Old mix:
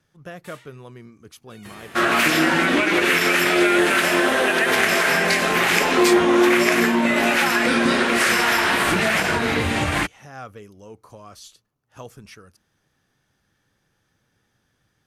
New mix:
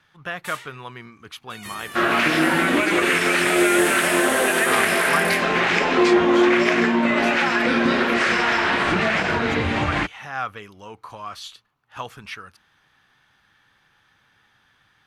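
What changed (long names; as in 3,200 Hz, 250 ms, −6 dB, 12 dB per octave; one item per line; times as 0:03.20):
speech: add flat-topped bell 1,800 Hz +12 dB 2.7 octaves
first sound +10.0 dB
second sound: add high-frequency loss of the air 130 metres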